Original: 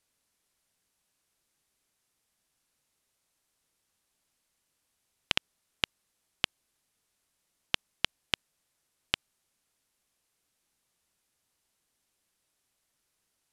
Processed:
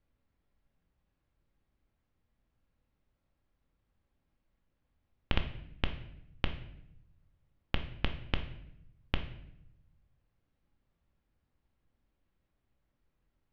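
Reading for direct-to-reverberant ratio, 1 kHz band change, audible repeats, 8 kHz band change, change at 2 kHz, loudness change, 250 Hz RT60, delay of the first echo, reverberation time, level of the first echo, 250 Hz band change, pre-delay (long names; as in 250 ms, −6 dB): 5.5 dB, −1.5 dB, no echo audible, below −25 dB, −6.0 dB, −5.5 dB, 1.1 s, no echo audible, 0.80 s, no echo audible, +7.0 dB, 4 ms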